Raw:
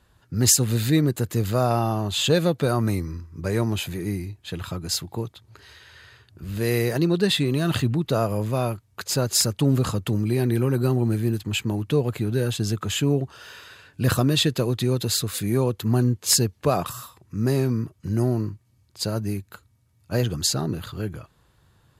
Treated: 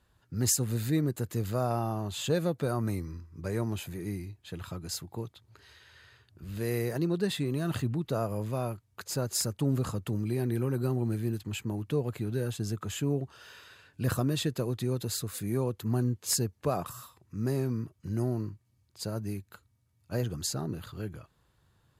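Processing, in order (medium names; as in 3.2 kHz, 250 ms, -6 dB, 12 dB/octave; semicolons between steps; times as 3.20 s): dynamic bell 3.4 kHz, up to -6 dB, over -42 dBFS, Q 1; trim -8 dB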